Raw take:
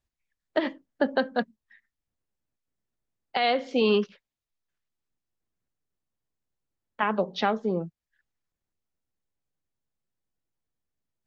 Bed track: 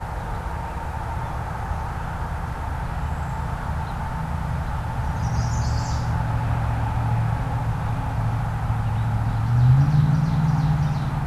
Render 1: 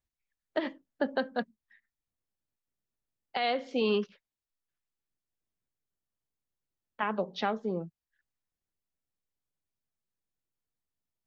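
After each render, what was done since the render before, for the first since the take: trim -5.5 dB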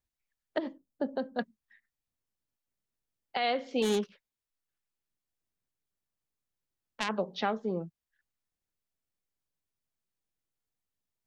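0.58–1.39 s: peaking EQ 2.2 kHz -14.5 dB 2.2 oct; 3.82–7.09 s: self-modulated delay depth 0.27 ms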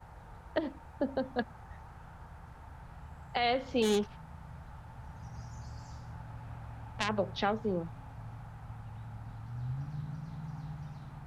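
add bed track -22 dB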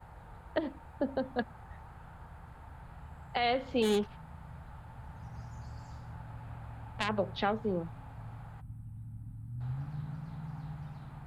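8.61–9.61 s: time-frequency box 310–7700 Hz -20 dB; peaking EQ 5.8 kHz -10 dB 0.4 oct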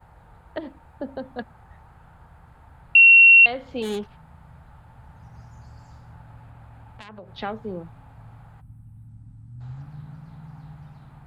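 2.95–3.46 s: bleep 2.73 kHz -7.5 dBFS; 6.43–7.38 s: compression 3:1, threshold -41 dBFS; 9.08–9.82 s: resonant low-pass 6.5 kHz, resonance Q 2.5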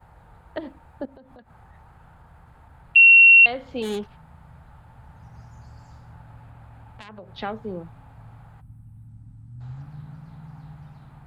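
1.05–2.96 s: compression 10:1, threshold -44 dBFS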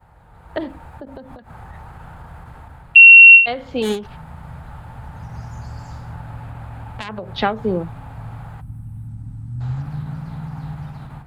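level rider gain up to 12.5 dB; endings held to a fixed fall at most 140 dB/s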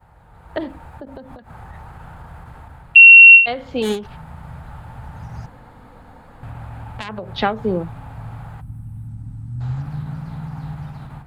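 5.46–6.43 s: room tone

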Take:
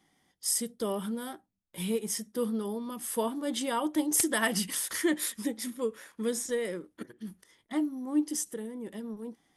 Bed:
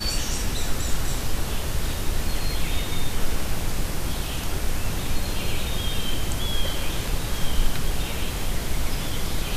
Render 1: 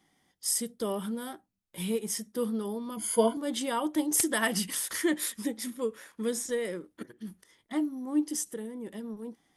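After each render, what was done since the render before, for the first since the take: 2.96–3.37 s: rippled EQ curve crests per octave 1.8, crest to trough 17 dB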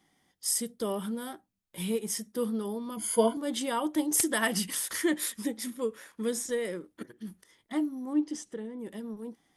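8.13–8.79 s: distance through air 110 m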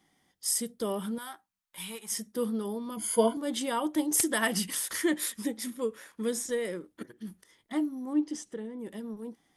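1.18–2.12 s: resonant low shelf 650 Hz -12.5 dB, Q 1.5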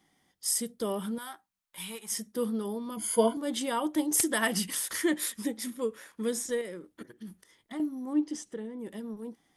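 6.61–7.80 s: compression 2:1, threshold -40 dBFS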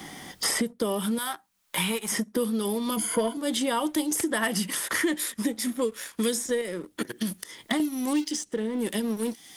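waveshaping leveller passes 1; three bands compressed up and down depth 100%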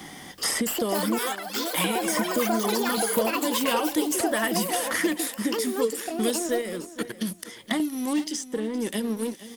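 ever faster or slower copies 379 ms, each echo +7 st, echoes 3; feedback delay 468 ms, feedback 24%, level -15 dB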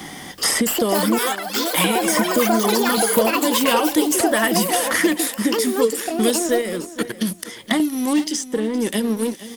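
trim +7 dB

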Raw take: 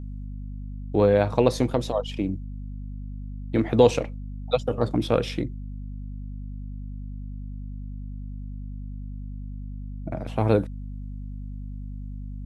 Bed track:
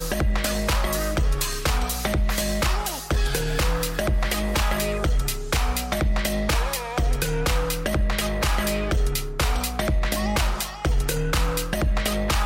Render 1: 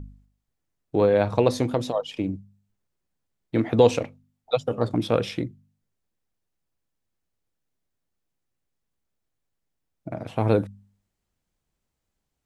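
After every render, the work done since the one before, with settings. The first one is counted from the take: de-hum 50 Hz, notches 5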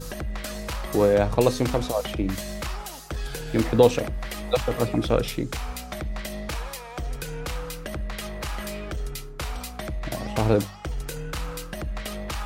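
add bed track -9 dB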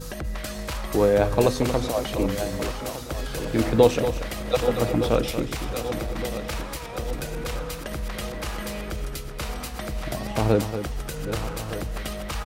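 backward echo that repeats 607 ms, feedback 73%, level -11 dB; delay 233 ms -10 dB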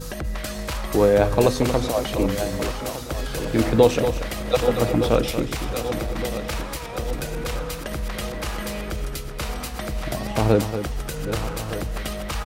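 trim +2.5 dB; peak limiter -3 dBFS, peak gain reduction 2 dB

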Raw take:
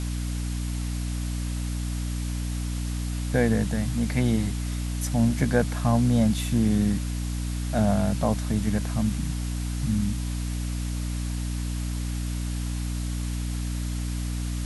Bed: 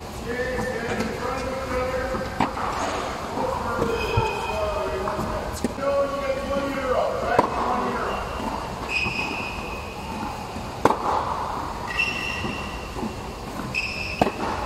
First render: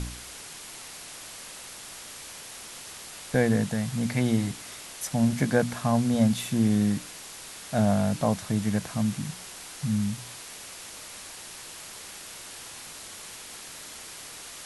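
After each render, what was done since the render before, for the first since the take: de-hum 60 Hz, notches 5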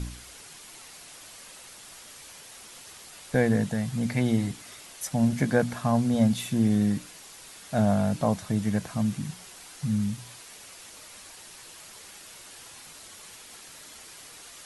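noise reduction 6 dB, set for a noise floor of -43 dBFS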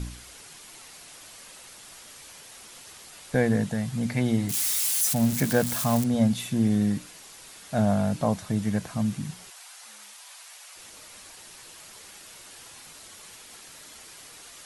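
4.49–6.04 s: zero-crossing glitches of -20.5 dBFS; 9.50–10.76 s: high-pass 660 Hz 24 dB/octave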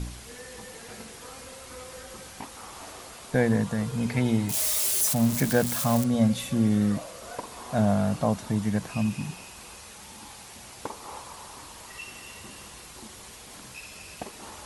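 add bed -18.5 dB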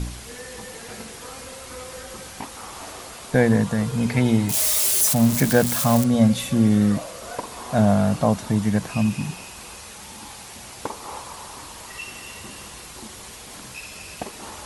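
trim +5.5 dB

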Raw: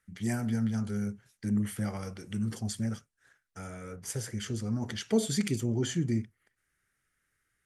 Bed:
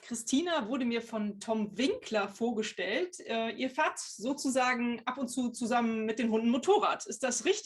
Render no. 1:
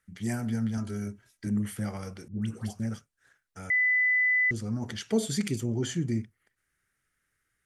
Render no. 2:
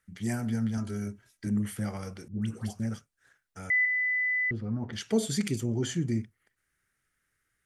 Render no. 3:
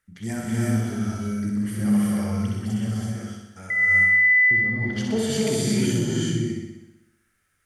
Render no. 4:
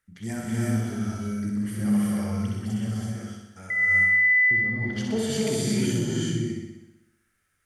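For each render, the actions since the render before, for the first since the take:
0.77–1.47 s: comb 3.1 ms; 2.28–2.80 s: phase dispersion highs, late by 138 ms, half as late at 870 Hz; 3.70–4.51 s: bleep 2 kHz -21 dBFS
3.85–4.93 s: distance through air 390 m
flutter echo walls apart 10.8 m, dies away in 0.93 s; gated-style reverb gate 400 ms rising, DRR -4 dB
trim -2.5 dB

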